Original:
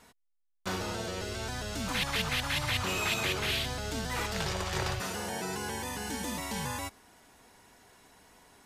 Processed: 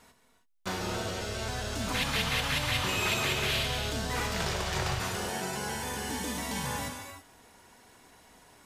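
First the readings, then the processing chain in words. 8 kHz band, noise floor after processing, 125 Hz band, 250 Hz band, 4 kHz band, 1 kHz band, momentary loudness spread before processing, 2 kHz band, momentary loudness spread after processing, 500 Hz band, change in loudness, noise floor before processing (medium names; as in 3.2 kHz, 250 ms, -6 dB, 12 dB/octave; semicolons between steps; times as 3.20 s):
+2.0 dB, -65 dBFS, +2.0 dB, +1.0 dB, +2.0 dB, +2.0 dB, 7 LU, +1.5 dB, 8 LU, +1.5 dB, +2.0 dB, -74 dBFS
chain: gated-style reverb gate 350 ms flat, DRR 3 dB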